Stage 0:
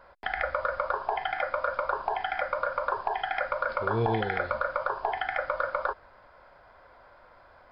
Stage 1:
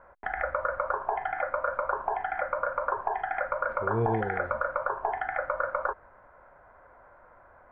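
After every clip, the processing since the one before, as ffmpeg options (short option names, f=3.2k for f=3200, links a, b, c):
-af "lowpass=f=1.9k:w=0.5412,lowpass=f=1.9k:w=1.3066"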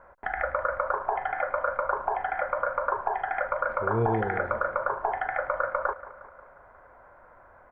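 -af "aecho=1:1:179|358|537|716|895:0.15|0.0868|0.0503|0.0292|0.0169,volume=1.5dB"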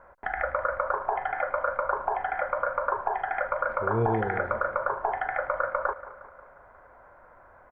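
-af "aecho=1:1:225:0.0708"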